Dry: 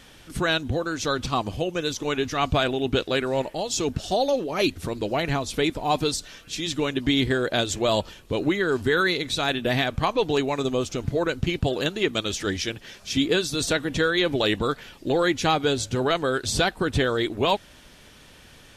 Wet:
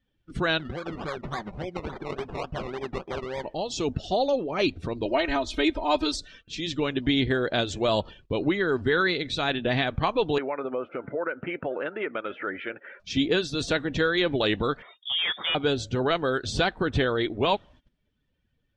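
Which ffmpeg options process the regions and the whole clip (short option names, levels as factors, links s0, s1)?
-filter_complex "[0:a]asettb=1/sr,asplit=3[s0][s1][s2];[s0]atrim=end=0.594[s3];[s1]atrim=start=0.59:end=3.44,asetpts=PTS-STARTPTS,afade=t=in:d=0.004:c=qsin,afade=t=out:st=2.846:d=0.004:c=qsin,aecho=1:1:5.3:0.63,atrim=end_sample=125685,acrossover=split=1100|2800[s4][s5][s6];[s4]acompressor=threshold=0.0251:ratio=4[s7];[s5]acompressor=threshold=0.0112:ratio=4[s8];[s6]acompressor=threshold=0.0178:ratio=4[s9];[s7][s8][s9]amix=inputs=3:normalize=0,acrusher=samples=22:mix=1:aa=0.000001:lfo=1:lforange=13.2:lforate=3.5[s10];[s2]atrim=start=3.436[s11];[s3][s10]acrossfade=d=0.004:c1=hsin:c2=qsin[s12];[s12][s11]acrossfade=d=0.004:c1=qsin:c2=hsin,asettb=1/sr,asplit=3[s13][s14][s15];[s13]atrim=end=5.054[s16];[s14]atrim=start=5.05:end=6.21,asetpts=PTS-STARTPTS,afade=t=in:d=0.004:c=qsin,afade=t=out:st=1.156:d=0.004:c=qsin,equalizer=f=150:w=1.4:g=-11,aecho=1:1:3.2:0.93,atrim=end_sample=51156[s17];[s15]atrim=start=6.206[s18];[s16][s17]acrossfade=d=0.004:c1=hsin:c2=qsin[s19];[s19][s18]acrossfade=d=0.004:c1=qsin:c2=hsin,asettb=1/sr,asplit=3[s20][s21][s22];[s20]atrim=end=10.384[s23];[s21]atrim=start=10.38:end=13,asetpts=PTS-STARTPTS,afade=t=in:d=0.004:c=qsin,afade=t=out:st=2.616:d=0.004:c=qsin,highpass=300,equalizer=f=550:t=q:w=4:g=7,equalizer=f=930:t=q:w=4:g=3,equalizer=f=1400:t=q:w=4:g=10,equalizer=f=2100:t=q:w=4:g=4,lowpass=f=2400:w=0.5412,lowpass=f=2400:w=1.3066,acompressor=threshold=0.0501:ratio=2.5:attack=3.2:release=140:knee=1:detection=peak[s24];[s22]atrim=start=12.996[s25];[s23][s24]acrossfade=d=0.004:c1=hsin:c2=qsin[s26];[s26][s25]acrossfade=d=0.004:c1=qsin:c2=hsin,asettb=1/sr,asplit=3[s27][s28][s29];[s27]atrim=end=14.824[s30];[s28]atrim=start=14.82:end=15.55,asetpts=PTS-STARTPTS,afade=t=in:d=0.004:c=qsin,afade=t=out:st=0.726:d=0.004:c=qsin,equalizer=f=180:w=0.46:g=-6,aeval=exprs='0.126*(abs(mod(val(0)/0.126+3,4)-2)-1)':c=same,lowpass=f=3100:t=q:w=0.5098,lowpass=f=3100:t=q:w=0.6013,lowpass=f=3100:t=q:w=0.9,lowpass=f=3100:t=q:w=2.563,afreqshift=-3700[s31];[s29]atrim=start=15.546[s32];[s30][s31]acrossfade=d=0.004:c1=hsin:c2=qsin[s33];[s33][s32]acrossfade=d=0.004:c1=qsin:c2=hsin,afftdn=nr=16:nf=-44,lowpass=4500,agate=range=0.141:threshold=0.00355:ratio=16:detection=peak,volume=0.841"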